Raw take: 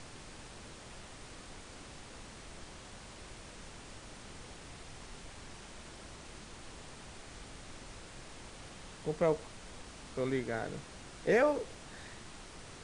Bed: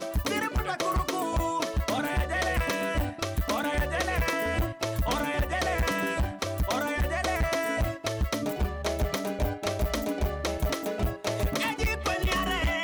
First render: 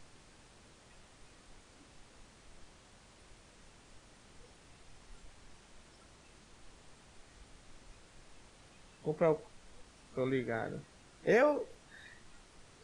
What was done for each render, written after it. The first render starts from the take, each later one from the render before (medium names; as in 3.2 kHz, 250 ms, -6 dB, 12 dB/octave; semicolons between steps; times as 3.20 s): noise print and reduce 10 dB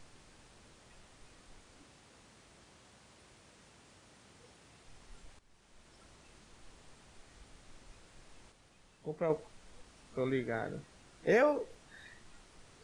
1.83–4.86 s: high-pass 70 Hz; 5.39–6.04 s: fade in, from -14.5 dB; 8.52–9.30 s: gain -5 dB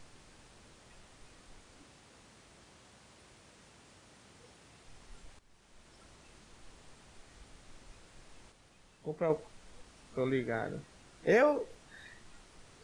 trim +1.5 dB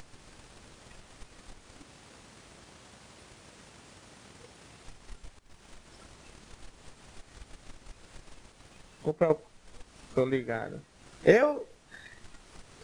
upward compressor, threshold -46 dBFS; transient shaper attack +11 dB, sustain -2 dB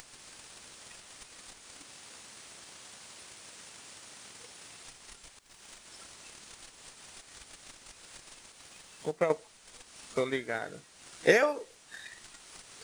tilt EQ +3 dB/octave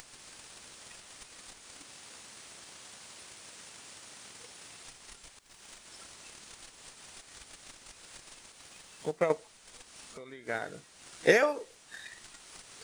10.01–10.47 s: compression 4:1, threshold -46 dBFS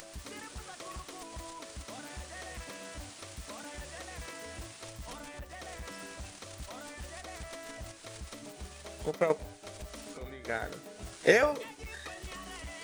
add bed -17.5 dB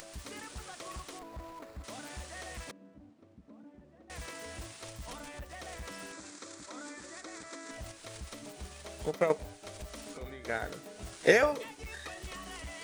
1.19–1.84 s: median filter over 15 samples; 2.71–4.10 s: band-pass filter 230 Hz, Q 2.1; 6.12–7.71 s: cabinet simulation 230–8400 Hz, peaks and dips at 310 Hz +9 dB, 720 Hz -8 dB, 1.4 kHz +3 dB, 2.9 kHz -10 dB, 7.4 kHz +5 dB